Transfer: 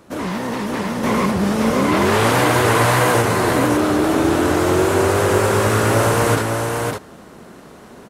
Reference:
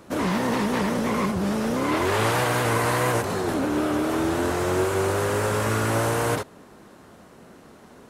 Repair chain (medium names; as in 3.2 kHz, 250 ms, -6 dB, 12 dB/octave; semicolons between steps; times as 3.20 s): inverse comb 553 ms -4 dB; trim 0 dB, from 1.03 s -6 dB